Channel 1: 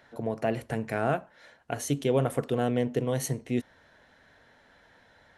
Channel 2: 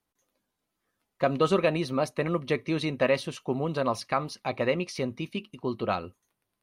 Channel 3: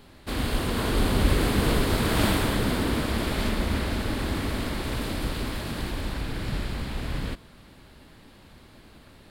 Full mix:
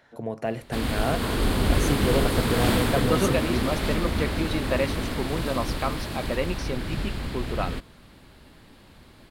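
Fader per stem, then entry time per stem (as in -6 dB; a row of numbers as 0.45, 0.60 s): -0.5, -1.5, 0.0 dB; 0.00, 1.70, 0.45 s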